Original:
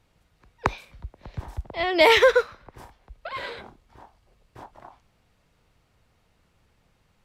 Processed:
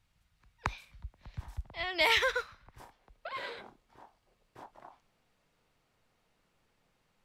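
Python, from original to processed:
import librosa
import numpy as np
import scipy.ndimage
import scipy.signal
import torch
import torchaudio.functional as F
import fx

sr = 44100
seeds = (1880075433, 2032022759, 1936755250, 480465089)

y = fx.peak_eq(x, sr, hz=fx.steps((0.0, 420.0), (2.8, 62.0)), db=-12.5, octaves=1.9)
y = y * librosa.db_to_amplitude(-6.0)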